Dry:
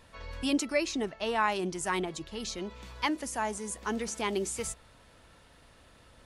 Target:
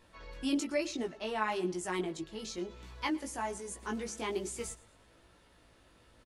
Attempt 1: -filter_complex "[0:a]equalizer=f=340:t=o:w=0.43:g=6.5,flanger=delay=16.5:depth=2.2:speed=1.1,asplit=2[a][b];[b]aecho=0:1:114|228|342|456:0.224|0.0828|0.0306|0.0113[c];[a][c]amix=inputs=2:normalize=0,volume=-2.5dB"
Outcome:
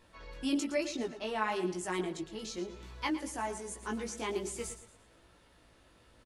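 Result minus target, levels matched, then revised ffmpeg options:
echo-to-direct +8.5 dB
-filter_complex "[0:a]equalizer=f=340:t=o:w=0.43:g=6.5,flanger=delay=16.5:depth=2.2:speed=1.1,asplit=2[a][b];[b]aecho=0:1:114|228|342:0.0841|0.0311|0.0115[c];[a][c]amix=inputs=2:normalize=0,volume=-2.5dB"

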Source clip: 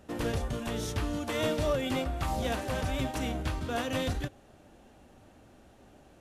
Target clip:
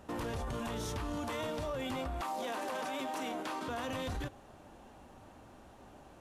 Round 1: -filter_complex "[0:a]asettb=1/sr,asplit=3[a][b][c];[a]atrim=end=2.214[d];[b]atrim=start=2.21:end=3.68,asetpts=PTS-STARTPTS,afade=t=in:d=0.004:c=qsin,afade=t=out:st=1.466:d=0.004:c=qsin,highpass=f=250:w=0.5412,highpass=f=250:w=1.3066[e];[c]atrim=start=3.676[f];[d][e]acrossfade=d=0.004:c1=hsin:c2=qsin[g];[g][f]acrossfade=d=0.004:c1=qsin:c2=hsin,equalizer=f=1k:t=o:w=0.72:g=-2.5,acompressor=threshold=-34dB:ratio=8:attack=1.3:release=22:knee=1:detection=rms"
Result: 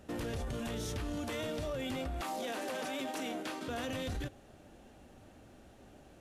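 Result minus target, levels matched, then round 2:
1000 Hz band -3.5 dB
-filter_complex "[0:a]asettb=1/sr,asplit=3[a][b][c];[a]atrim=end=2.214[d];[b]atrim=start=2.21:end=3.68,asetpts=PTS-STARTPTS,afade=t=in:d=0.004:c=qsin,afade=t=out:st=1.466:d=0.004:c=qsin,highpass=f=250:w=0.5412,highpass=f=250:w=1.3066[e];[c]atrim=start=3.676[f];[d][e]acrossfade=d=0.004:c1=hsin:c2=qsin[g];[g][f]acrossfade=d=0.004:c1=qsin:c2=hsin,equalizer=f=1k:t=o:w=0.72:g=8,acompressor=threshold=-34dB:ratio=8:attack=1.3:release=22:knee=1:detection=rms"

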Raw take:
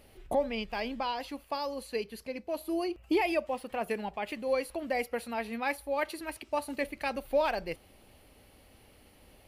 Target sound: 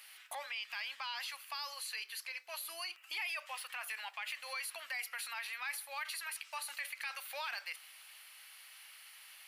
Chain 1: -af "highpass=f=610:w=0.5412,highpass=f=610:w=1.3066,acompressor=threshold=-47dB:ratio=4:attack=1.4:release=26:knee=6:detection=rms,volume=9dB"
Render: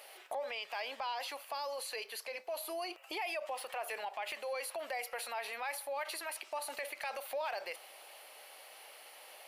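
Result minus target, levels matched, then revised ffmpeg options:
500 Hz band +14.0 dB
-af "highpass=f=1.3k:w=0.5412,highpass=f=1.3k:w=1.3066,acompressor=threshold=-47dB:ratio=4:attack=1.4:release=26:knee=6:detection=rms,volume=9dB"

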